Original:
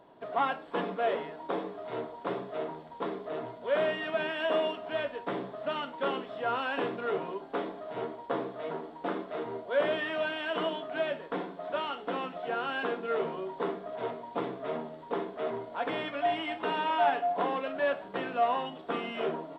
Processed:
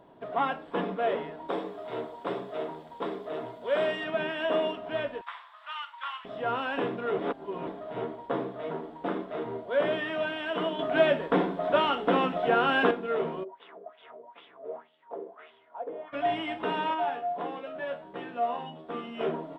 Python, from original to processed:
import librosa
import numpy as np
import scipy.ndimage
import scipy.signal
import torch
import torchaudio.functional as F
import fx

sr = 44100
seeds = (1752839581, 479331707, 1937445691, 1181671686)

y = fx.bass_treble(x, sr, bass_db=-6, treble_db=9, at=(1.48, 4.04))
y = fx.ellip_highpass(y, sr, hz=1000.0, order=4, stop_db=80, at=(5.21, 6.25))
y = fx.wah_lfo(y, sr, hz=fx.line((13.43, 3.1), (16.12, 1.2)), low_hz=460.0, high_hz=3300.0, q=4.4, at=(13.43, 16.12), fade=0.02)
y = fx.comb_fb(y, sr, f0_hz=79.0, decay_s=0.2, harmonics='all', damping=0.0, mix_pct=90, at=(16.93, 19.19), fade=0.02)
y = fx.edit(y, sr, fx.reverse_span(start_s=7.19, length_s=0.48),
    fx.clip_gain(start_s=10.79, length_s=2.12, db=8.0), tone=tone)
y = fx.low_shelf(y, sr, hz=280.0, db=6.5)
y = fx.notch(y, sr, hz=4300.0, q=17.0)